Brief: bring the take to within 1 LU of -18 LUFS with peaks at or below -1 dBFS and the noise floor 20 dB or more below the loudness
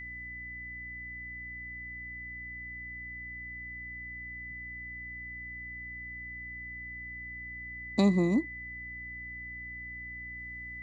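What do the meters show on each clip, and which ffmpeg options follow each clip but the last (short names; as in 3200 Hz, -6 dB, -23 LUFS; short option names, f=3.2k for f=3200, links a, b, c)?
hum 60 Hz; harmonics up to 300 Hz; hum level -48 dBFS; steady tone 2000 Hz; tone level -40 dBFS; loudness -36.5 LUFS; peak -14.0 dBFS; loudness target -18.0 LUFS
-> -af "bandreject=f=60:t=h:w=4,bandreject=f=120:t=h:w=4,bandreject=f=180:t=h:w=4,bandreject=f=240:t=h:w=4,bandreject=f=300:t=h:w=4"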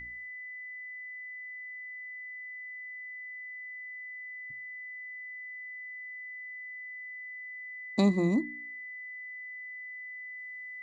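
hum none; steady tone 2000 Hz; tone level -40 dBFS
-> -af "bandreject=f=2k:w=30"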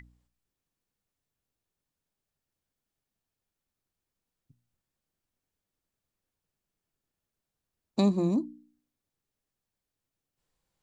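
steady tone none; loudness -28.0 LUFS; peak -13.5 dBFS; loudness target -18.0 LUFS
-> -af "volume=10dB"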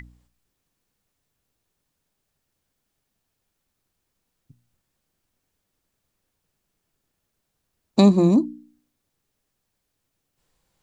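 loudness -18.0 LUFS; peak -3.5 dBFS; noise floor -78 dBFS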